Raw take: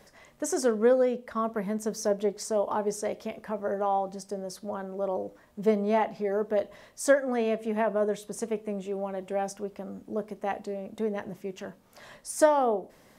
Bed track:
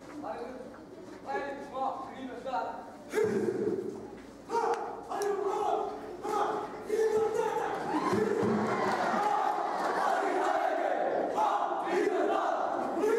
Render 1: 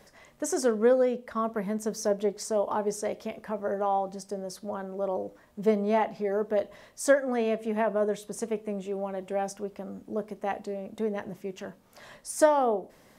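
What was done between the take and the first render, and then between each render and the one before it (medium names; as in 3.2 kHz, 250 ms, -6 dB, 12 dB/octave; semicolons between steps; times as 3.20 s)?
no audible change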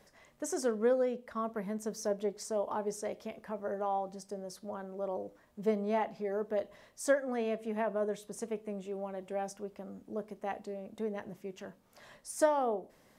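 trim -6.5 dB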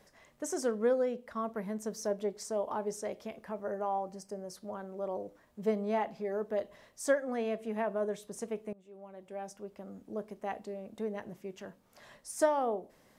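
3.63–4.54 s: peaking EQ 3.6 kHz -12.5 dB 0.21 oct; 8.73–10.00 s: fade in, from -22 dB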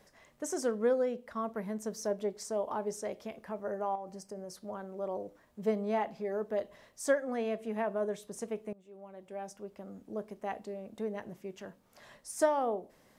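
3.95–4.60 s: compression 4:1, threshold -38 dBFS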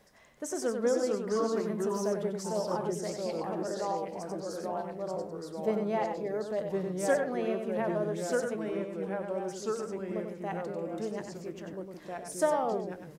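delay 94 ms -6.5 dB; ever faster or slower copies 369 ms, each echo -2 st, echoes 2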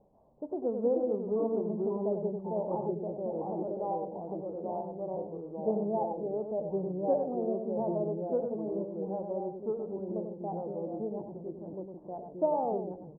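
elliptic low-pass 870 Hz, stop band 60 dB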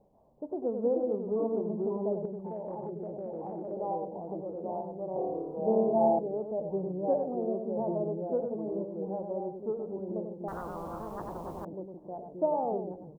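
2.25–3.72 s: compression, threshold -34 dBFS; 5.13–6.19 s: flutter echo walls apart 4.6 m, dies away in 1.1 s; 10.48–11.65 s: spectrum-flattening compressor 10:1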